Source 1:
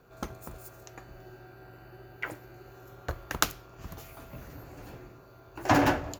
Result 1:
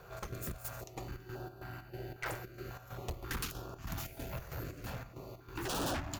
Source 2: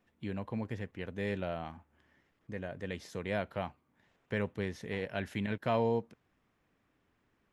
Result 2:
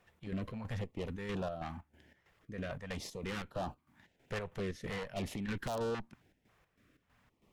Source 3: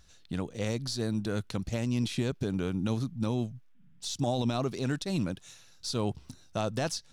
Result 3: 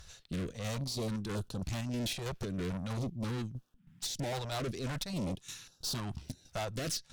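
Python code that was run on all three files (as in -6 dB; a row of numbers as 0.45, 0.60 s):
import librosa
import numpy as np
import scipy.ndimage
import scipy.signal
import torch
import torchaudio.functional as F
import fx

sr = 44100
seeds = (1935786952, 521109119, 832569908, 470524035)

y = (np.mod(10.0 ** (18.5 / 20.0) * x + 1.0, 2.0) - 1.0) / 10.0 ** (18.5 / 20.0)
y = fx.chopper(y, sr, hz=3.1, depth_pct=65, duty_pct=60)
y = fx.tube_stage(y, sr, drive_db=42.0, bias=0.5)
y = fx.filter_held_notch(y, sr, hz=3.7, low_hz=260.0, high_hz=2100.0)
y = y * 10.0 ** (9.5 / 20.0)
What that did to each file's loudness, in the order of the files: -12.0, -3.5, -5.0 LU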